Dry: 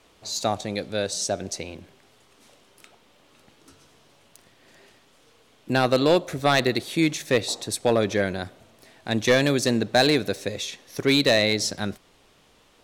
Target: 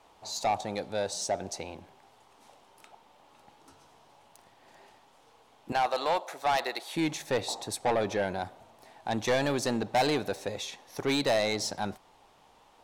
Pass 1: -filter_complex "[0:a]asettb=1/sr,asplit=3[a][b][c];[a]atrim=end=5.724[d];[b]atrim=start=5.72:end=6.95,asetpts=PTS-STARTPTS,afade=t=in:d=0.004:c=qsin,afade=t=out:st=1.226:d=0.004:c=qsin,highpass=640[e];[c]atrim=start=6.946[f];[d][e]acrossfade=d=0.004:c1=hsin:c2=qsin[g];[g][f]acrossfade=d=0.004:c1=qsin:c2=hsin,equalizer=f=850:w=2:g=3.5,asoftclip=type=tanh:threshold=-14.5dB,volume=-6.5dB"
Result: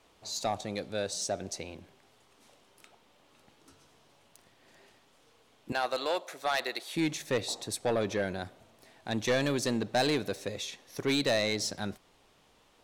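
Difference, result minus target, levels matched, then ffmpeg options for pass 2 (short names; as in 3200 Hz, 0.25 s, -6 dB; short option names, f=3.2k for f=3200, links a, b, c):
1000 Hz band -4.5 dB
-filter_complex "[0:a]asettb=1/sr,asplit=3[a][b][c];[a]atrim=end=5.724[d];[b]atrim=start=5.72:end=6.95,asetpts=PTS-STARTPTS,afade=t=in:d=0.004:c=qsin,afade=t=out:st=1.226:d=0.004:c=qsin,highpass=640[e];[c]atrim=start=6.946[f];[d][e]acrossfade=d=0.004:c1=hsin:c2=qsin[g];[g][f]acrossfade=d=0.004:c1=qsin:c2=hsin,equalizer=f=850:w=2:g=15,asoftclip=type=tanh:threshold=-14.5dB,volume=-6.5dB"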